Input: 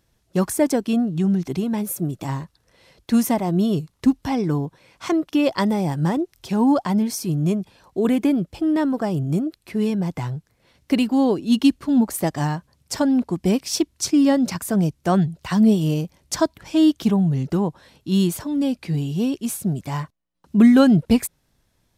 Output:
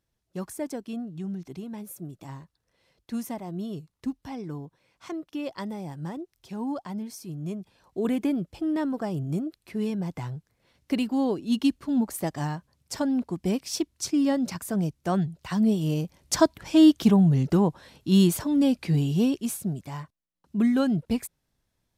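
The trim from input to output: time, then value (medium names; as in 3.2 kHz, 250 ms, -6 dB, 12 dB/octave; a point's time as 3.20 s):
7.36 s -14 dB
8.00 s -7 dB
15.74 s -7 dB
16.34 s 0 dB
19.17 s 0 dB
19.96 s -10 dB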